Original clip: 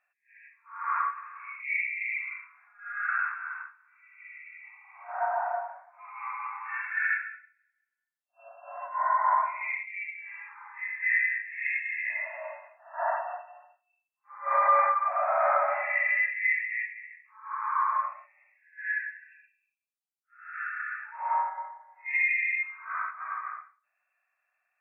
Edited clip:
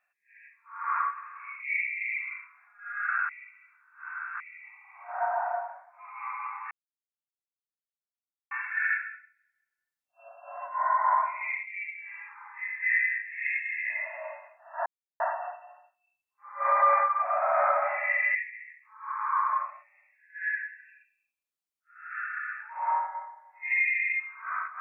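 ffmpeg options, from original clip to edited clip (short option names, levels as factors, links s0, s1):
-filter_complex "[0:a]asplit=6[s0][s1][s2][s3][s4][s5];[s0]atrim=end=3.292[s6];[s1]atrim=start=3.288:end=4.402,asetpts=PTS-STARTPTS,areverse[s7];[s2]atrim=start=4.398:end=6.71,asetpts=PTS-STARTPTS,afade=t=out:st=2.308:d=0.004:c=hsin,apad=pad_dur=1.8[s8];[s3]atrim=start=6.71:end=13.06,asetpts=PTS-STARTPTS,afade=t=in:d=0.004:c=hsin,afade=t=out:st=6.346:d=0.004:c=hsin,apad=pad_dur=0.34[s9];[s4]atrim=start=13.06:end=16.212,asetpts=PTS-STARTPTS,afade=t=in:d=0.004:c=hsin[s10];[s5]atrim=start=16.778[s11];[s6][s7]acrossfade=d=0.004:c1=hsin:c2=hsin[s12];[s8][s9][s10]concat=n=3:v=0:a=1[s13];[s12][s13]acrossfade=d=0.004:c1=hsin:c2=hsin[s14];[s14][s11]acrossfade=d=0.004:c1=hsin:c2=hsin"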